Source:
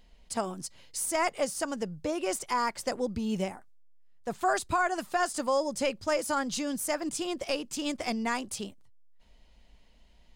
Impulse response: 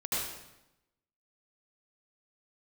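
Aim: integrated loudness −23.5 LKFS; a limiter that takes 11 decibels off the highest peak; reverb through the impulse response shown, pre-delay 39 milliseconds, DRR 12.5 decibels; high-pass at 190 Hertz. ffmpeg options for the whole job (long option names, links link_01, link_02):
-filter_complex "[0:a]highpass=190,alimiter=level_in=3.5dB:limit=-24dB:level=0:latency=1,volume=-3.5dB,asplit=2[link_01][link_02];[1:a]atrim=start_sample=2205,adelay=39[link_03];[link_02][link_03]afir=irnorm=-1:irlink=0,volume=-19dB[link_04];[link_01][link_04]amix=inputs=2:normalize=0,volume=13.5dB"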